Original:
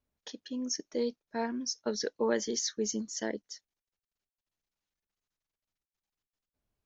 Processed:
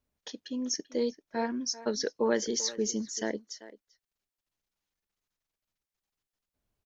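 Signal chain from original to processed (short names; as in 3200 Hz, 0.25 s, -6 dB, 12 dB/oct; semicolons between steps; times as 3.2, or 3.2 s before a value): speakerphone echo 0.39 s, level -15 dB; gain +2 dB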